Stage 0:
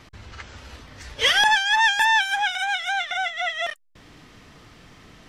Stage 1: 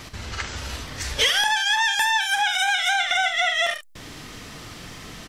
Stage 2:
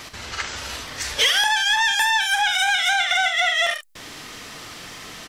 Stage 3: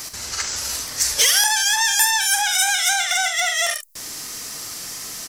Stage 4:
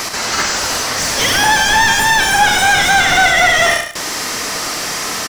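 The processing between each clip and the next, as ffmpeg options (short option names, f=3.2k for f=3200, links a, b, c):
-af "highshelf=f=5k:g=10.5,aecho=1:1:44|73:0.316|0.237,acompressor=threshold=-25dB:ratio=10,volume=7.5dB"
-filter_complex "[0:a]lowshelf=f=270:g=-12,asplit=2[a][b];[b]asoftclip=type=tanh:threshold=-23dB,volume=-5.5dB[c];[a][c]amix=inputs=2:normalize=0"
-af "aexciter=amount=5:drive=5.5:freq=4.7k,volume=-2dB"
-filter_complex "[0:a]asplit=2[a][b];[b]highpass=f=720:p=1,volume=29dB,asoftclip=type=tanh:threshold=-1dB[c];[a][c]amix=inputs=2:normalize=0,lowpass=f=1.1k:p=1,volume=-6dB,aecho=1:1:104|208|312:0.376|0.0789|0.0166,volume=3dB"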